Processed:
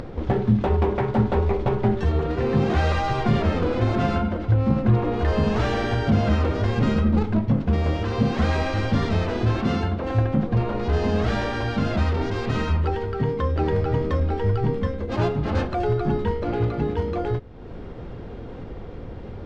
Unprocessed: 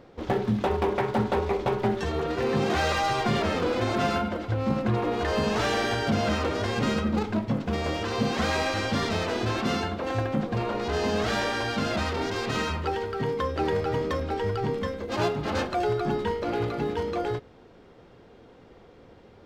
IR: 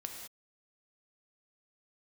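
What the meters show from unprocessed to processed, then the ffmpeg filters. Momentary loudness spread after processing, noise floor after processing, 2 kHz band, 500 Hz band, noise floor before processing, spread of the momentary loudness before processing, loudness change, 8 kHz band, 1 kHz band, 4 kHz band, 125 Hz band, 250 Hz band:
6 LU, -36 dBFS, -1.0 dB, +2.0 dB, -52 dBFS, 4 LU, +4.0 dB, n/a, +0.5 dB, -3.5 dB, +9.5 dB, +5.0 dB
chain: -af "aemphasis=mode=reproduction:type=bsi,acompressor=mode=upward:threshold=-24dB:ratio=2.5"

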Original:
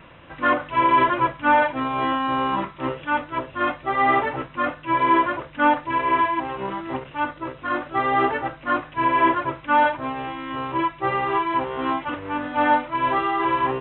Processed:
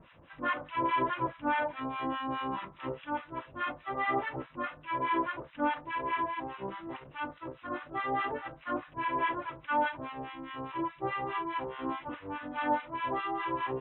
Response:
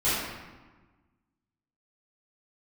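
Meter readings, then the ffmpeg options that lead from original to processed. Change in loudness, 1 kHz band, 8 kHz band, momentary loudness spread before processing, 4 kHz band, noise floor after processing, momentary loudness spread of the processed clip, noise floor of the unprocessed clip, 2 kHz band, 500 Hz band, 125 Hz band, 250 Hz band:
-12.0 dB, -12.5 dB, n/a, 10 LU, -11.0 dB, -57 dBFS, 10 LU, -45 dBFS, -11.5 dB, -11.5 dB, -10.5 dB, -11.0 dB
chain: -filter_complex "[0:a]acrossover=split=1000[a][b];[a]aeval=exprs='val(0)*(1-1/2+1/2*cos(2*PI*4.8*n/s))':c=same[c];[b]aeval=exprs='val(0)*(1-1/2-1/2*cos(2*PI*4.8*n/s))':c=same[d];[c][d]amix=inputs=2:normalize=0,volume=-6.5dB"

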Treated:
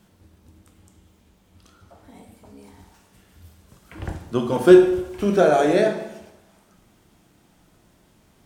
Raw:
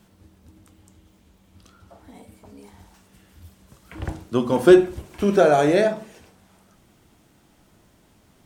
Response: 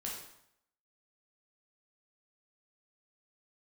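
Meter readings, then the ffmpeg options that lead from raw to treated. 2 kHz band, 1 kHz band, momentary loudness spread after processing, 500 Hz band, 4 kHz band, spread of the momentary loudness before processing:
-0.5 dB, -0.5 dB, 21 LU, +1.0 dB, -0.5 dB, 20 LU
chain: -filter_complex "[0:a]asplit=2[a][b];[1:a]atrim=start_sample=2205,asetrate=37044,aresample=44100[c];[b][c]afir=irnorm=-1:irlink=0,volume=-2dB[d];[a][d]amix=inputs=2:normalize=0,volume=-5dB"

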